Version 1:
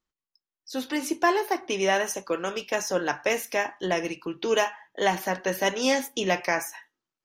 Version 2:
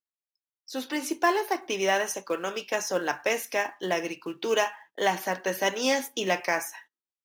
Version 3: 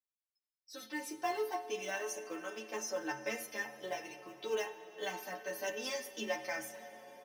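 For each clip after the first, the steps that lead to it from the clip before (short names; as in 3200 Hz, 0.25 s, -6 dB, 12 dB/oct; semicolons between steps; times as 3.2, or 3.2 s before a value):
HPF 220 Hz 6 dB/oct; gate -50 dBFS, range -15 dB; in parallel at -4 dB: short-mantissa float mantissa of 2-bit; on the sum: gain -5 dB
metallic resonator 65 Hz, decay 0.44 s, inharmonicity 0.03; reverb RT60 6.9 s, pre-delay 34 ms, DRR 12.5 dB; endless flanger 10 ms -0.33 Hz; gain +1.5 dB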